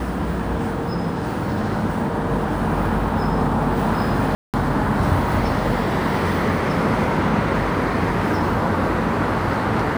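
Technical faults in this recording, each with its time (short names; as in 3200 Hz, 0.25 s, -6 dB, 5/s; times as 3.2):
4.35–4.54 gap 0.188 s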